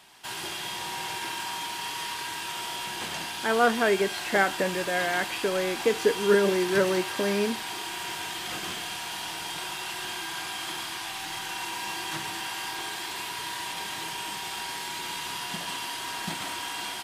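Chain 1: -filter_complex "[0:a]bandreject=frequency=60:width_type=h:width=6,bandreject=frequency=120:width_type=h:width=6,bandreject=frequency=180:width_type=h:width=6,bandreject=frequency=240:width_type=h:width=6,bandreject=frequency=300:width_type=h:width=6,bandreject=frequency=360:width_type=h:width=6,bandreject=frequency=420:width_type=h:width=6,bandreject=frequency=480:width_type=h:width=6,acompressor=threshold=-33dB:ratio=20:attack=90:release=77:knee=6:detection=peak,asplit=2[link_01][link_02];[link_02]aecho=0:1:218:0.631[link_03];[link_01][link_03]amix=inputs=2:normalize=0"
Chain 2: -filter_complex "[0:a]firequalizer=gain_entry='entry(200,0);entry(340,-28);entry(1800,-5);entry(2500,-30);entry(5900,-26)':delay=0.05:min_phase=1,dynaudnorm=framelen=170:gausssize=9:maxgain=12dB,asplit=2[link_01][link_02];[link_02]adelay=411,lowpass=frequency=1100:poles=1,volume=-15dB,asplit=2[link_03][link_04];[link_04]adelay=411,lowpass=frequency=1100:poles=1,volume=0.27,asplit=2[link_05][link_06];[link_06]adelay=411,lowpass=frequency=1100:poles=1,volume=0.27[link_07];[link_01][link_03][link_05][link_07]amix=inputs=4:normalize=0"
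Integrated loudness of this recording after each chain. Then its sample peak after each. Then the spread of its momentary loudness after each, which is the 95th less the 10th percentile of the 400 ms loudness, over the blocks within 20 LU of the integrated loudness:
−31.0, −29.0 LKFS; −14.0, −9.0 dBFS; 3, 15 LU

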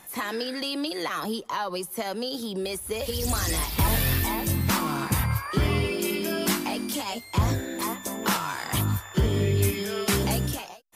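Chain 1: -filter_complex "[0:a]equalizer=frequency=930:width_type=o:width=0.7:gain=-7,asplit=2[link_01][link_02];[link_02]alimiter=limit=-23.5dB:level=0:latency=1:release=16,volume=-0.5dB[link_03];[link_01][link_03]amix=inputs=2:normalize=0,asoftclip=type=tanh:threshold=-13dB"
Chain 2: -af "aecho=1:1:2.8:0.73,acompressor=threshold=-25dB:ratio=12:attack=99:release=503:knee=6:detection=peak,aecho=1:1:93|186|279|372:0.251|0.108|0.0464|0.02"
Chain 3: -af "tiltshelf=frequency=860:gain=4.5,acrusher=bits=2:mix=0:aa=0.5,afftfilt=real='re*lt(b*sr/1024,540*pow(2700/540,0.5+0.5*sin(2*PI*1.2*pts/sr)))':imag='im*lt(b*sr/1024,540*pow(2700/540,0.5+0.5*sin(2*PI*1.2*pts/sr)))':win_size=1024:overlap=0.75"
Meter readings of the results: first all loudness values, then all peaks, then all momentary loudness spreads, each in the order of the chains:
−24.5, −28.0, −25.5 LKFS; −14.0, −12.5, −8.5 dBFS; 5, 3, 14 LU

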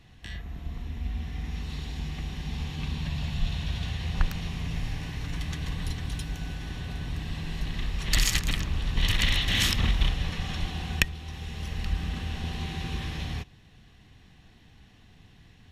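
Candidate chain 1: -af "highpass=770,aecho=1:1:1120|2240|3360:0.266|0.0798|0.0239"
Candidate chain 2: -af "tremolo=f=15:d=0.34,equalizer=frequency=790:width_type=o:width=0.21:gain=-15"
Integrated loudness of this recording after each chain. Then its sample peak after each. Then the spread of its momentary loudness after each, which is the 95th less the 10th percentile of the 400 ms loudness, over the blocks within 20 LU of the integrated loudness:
−33.5, −32.5 LKFS; −5.5, −9.0 dBFS; 23, 12 LU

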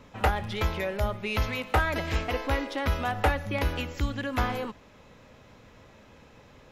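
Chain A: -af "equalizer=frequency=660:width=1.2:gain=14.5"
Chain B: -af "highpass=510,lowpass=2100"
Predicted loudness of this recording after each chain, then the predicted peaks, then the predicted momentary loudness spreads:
−22.0, −33.0 LKFS; −2.0, −12.5 dBFS; 8, 8 LU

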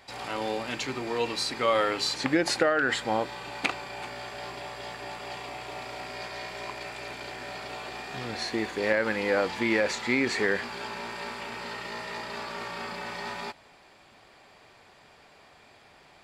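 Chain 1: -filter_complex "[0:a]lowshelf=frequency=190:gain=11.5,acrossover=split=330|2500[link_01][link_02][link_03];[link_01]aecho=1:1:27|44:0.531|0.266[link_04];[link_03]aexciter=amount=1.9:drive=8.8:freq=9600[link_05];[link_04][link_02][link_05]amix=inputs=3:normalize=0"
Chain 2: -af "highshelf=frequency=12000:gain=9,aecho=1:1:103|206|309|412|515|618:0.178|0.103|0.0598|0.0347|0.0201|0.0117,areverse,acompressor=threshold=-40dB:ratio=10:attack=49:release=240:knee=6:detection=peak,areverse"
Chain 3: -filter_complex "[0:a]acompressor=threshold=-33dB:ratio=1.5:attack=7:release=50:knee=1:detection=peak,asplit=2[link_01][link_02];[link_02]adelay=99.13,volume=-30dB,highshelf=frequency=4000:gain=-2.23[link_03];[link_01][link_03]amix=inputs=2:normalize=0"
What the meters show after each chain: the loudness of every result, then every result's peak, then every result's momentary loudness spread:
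−28.5, −40.5, −33.0 LKFS; −6.5, −22.0, −13.0 dBFS; 13, 15, 9 LU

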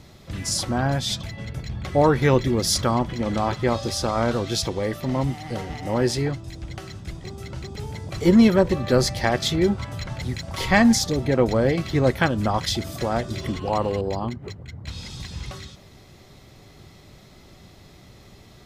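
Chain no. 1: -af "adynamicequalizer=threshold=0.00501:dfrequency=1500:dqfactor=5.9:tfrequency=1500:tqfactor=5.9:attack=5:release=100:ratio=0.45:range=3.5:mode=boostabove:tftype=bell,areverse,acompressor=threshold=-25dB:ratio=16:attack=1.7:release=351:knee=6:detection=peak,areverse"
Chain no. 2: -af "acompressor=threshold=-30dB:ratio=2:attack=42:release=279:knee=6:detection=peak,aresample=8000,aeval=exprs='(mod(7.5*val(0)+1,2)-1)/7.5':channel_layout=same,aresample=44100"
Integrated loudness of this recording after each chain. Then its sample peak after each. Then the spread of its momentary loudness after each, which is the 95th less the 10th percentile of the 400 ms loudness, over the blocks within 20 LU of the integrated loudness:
−33.0, −29.5 LKFS; −18.5, −13.0 dBFS; 17, 15 LU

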